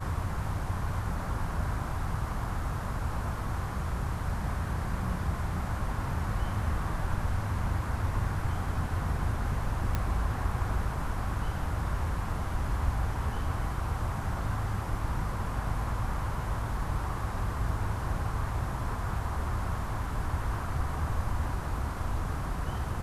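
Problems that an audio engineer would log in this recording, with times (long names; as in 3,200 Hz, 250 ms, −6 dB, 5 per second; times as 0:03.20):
0:09.95: click −16 dBFS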